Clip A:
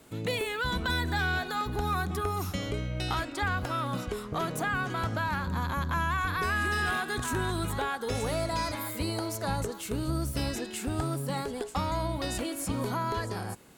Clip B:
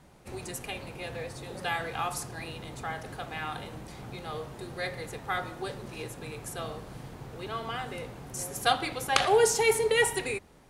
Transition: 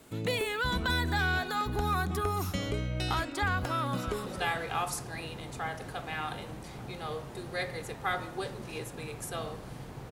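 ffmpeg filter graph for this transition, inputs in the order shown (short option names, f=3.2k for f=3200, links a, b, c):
-filter_complex "[0:a]apad=whole_dur=10.11,atrim=end=10.11,atrim=end=4.262[a];[1:a]atrim=start=1.498:end=7.35[b];[a][b]acrossfade=d=0.004:c1=hsin:c2=hsin,asplit=2[c][d];[d]afade=t=in:st=3.73:d=0.01,afade=t=out:st=4.26:d=0.01,aecho=0:1:300|600|900|1200:0.334965|0.133986|0.0535945|0.0214378[e];[c][e]amix=inputs=2:normalize=0"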